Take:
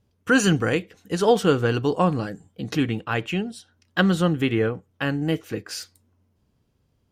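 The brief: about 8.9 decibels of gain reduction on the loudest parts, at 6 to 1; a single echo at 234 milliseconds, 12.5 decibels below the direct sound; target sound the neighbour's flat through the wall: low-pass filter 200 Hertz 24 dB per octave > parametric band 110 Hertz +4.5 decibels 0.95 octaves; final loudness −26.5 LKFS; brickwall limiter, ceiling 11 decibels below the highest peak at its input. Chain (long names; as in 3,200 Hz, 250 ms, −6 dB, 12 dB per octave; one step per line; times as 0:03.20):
downward compressor 6 to 1, threshold −22 dBFS
brickwall limiter −21.5 dBFS
low-pass filter 200 Hz 24 dB per octave
parametric band 110 Hz +4.5 dB 0.95 octaves
single-tap delay 234 ms −12.5 dB
level +8 dB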